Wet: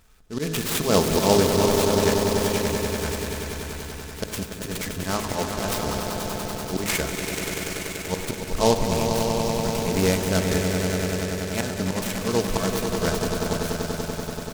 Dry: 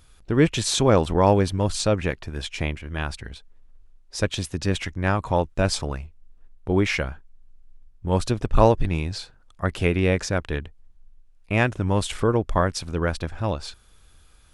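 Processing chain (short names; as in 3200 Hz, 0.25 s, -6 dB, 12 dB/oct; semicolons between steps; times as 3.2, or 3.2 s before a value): low shelf 72 Hz -6.5 dB; comb 4.6 ms, depth 43%; de-hum 53.17 Hz, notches 33; auto swell 0.132 s; on a send: swelling echo 96 ms, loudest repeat 5, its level -8 dB; on the sum: downsampling 11025 Hz; noise-modulated delay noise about 4600 Hz, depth 0.074 ms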